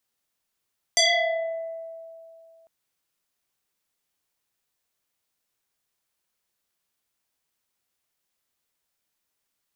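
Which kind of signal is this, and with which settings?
FM tone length 1.70 s, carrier 657 Hz, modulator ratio 2.05, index 5.5, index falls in 1.15 s exponential, decay 2.63 s, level -15 dB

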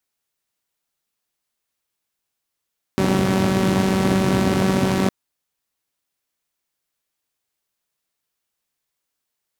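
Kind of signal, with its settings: four-cylinder engine model, steady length 2.11 s, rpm 5700, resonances 130/220 Hz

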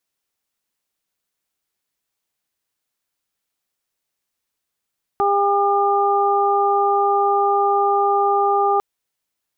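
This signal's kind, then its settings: steady additive tone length 3.60 s, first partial 402 Hz, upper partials 2.5/-1 dB, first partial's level -19.5 dB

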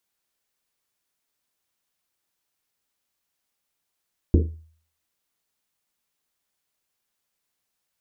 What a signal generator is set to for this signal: Risset drum, pitch 80 Hz, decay 0.50 s, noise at 310 Hz, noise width 260 Hz, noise 35%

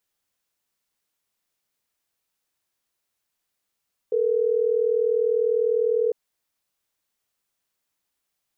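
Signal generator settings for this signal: call progress tone ringback tone, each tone -21.5 dBFS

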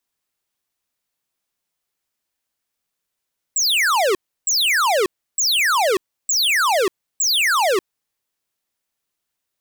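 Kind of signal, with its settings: burst of laser zaps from 8 kHz, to 350 Hz, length 0.59 s square, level -17 dB, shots 5, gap 0.32 s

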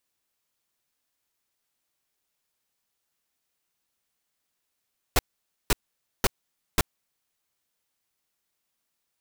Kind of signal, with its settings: noise bursts pink, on 0.03 s, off 0.51 s, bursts 4, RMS -19.5 dBFS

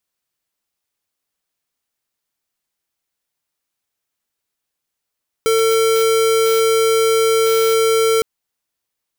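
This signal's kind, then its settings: tone square 450 Hz -14.5 dBFS 2.76 s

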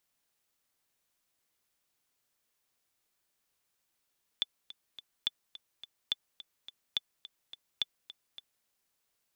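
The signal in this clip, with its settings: metronome 212 bpm, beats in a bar 3, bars 5, 3.49 kHz, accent 16.5 dB -16 dBFS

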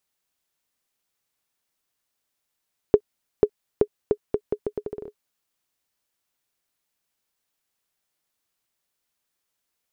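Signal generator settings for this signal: bouncing ball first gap 0.49 s, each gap 0.78, 418 Hz, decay 65 ms -2.5 dBFS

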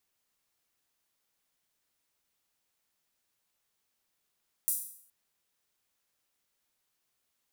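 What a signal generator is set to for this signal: open hi-hat length 0.42 s, high-pass 9.6 kHz, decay 0.60 s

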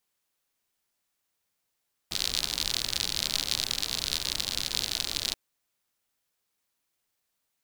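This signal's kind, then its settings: rain from filtered ticks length 3.23 s, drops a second 68, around 4.1 kHz, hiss -10 dB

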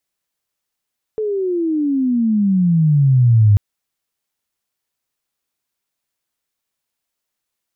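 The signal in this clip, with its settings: sweep logarithmic 440 Hz -> 100 Hz -17.5 dBFS -> -7 dBFS 2.39 s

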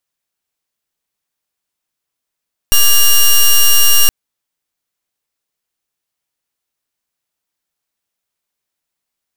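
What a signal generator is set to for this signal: pulse 2.83 kHz, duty 9% -7 dBFS 1.37 s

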